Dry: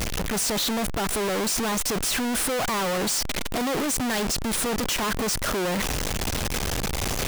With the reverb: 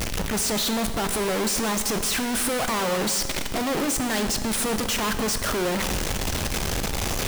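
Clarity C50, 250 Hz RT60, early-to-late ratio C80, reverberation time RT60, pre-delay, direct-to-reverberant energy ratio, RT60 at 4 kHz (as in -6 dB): 9.5 dB, 1.6 s, 11.0 dB, 1.7 s, 5 ms, 8.0 dB, 1.6 s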